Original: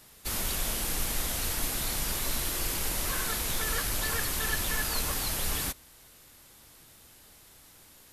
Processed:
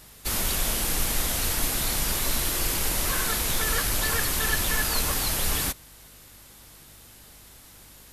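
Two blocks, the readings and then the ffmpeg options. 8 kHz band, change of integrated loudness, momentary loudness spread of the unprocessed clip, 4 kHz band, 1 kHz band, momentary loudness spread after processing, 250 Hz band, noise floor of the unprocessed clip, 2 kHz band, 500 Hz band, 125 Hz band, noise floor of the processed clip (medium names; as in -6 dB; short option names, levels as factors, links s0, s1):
+5.0 dB, +5.0 dB, 2 LU, +5.0 dB, +5.0 dB, 2 LU, +5.0 dB, -56 dBFS, +5.0 dB, +5.0 dB, +5.0 dB, -50 dBFS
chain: -af "aeval=exprs='val(0)+0.000891*(sin(2*PI*50*n/s)+sin(2*PI*2*50*n/s)/2+sin(2*PI*3*50*n/s)/3+sin(2*PI*4*50*n/s)/4+sin(2*PI*5*50*n/s)/5)':c=same,volume=1.78"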